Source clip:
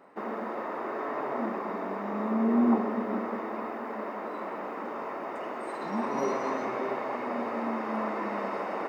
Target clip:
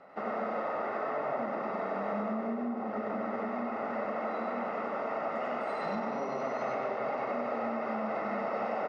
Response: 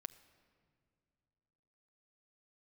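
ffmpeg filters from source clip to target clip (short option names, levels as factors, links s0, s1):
-filter_complex "[0:a]lowpass=f=5900:w=0.5412,lowpass=f=5900:w=1.3066,acrossover=split=1200[s0][s1];[s1]alimiter=level_in=3.76:limit=0.0631:level=0:latency=1,volume=0.266[s2];[s0][s2]amix=inputs=2:normalize=0,asplit=2[s3][s4];[s4]adelay=949,lowpass=f=2000:p=1,volume=0.251,asplit=2[s5][s6];[s6]adelay=949,lowpass=f=2000:p=1,volume=0.54,asplit=2[s7][s8];[s8]adelay=949,lowpass=f=2000:p=1,volume=0.54,asplit=2[s9][s10];[s10]adelay=949,lowpass=f=2000:p=1,volume=0.54,asplit=2[s11][s12];[s12]adelay=949,lowpass=f=2000:p=1,volume=0.54,asplit=2[s13][s14];[s14]adelay=949,lowpass=f=2000:p=1,volume=0.54[s15];[s3][s5][s7][s9][s11][s13][s15]amix=inputs=7:normalize=0,asplit=2[s16][s17];[1:a]atrim=start_sample=2205,adelay=96[s18];[s17][s18]afir=irnorm=-1:irlink=0,volume=1.5[s19];[s16][s19]amix=inputs=2:normalize=0,acompressor=threshold=0.0316:ratio=10,aecho=1:1:1.5:0.58"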